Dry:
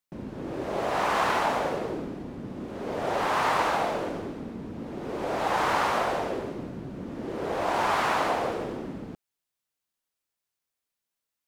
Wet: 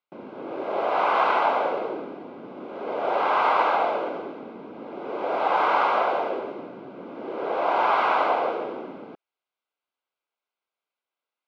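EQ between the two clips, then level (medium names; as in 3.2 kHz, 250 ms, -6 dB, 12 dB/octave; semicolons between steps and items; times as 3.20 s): high-pass 450 Hz 12 dB/octave; Butterworth band-stop 1.8 kHz, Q 5.2; distance through air 350 m; +6.5 dB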